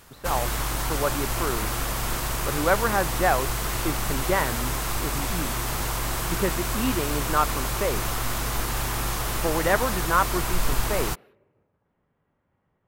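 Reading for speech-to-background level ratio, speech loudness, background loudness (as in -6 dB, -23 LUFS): -0.5 dB, -28.0 LUFS, -27.5 LUFS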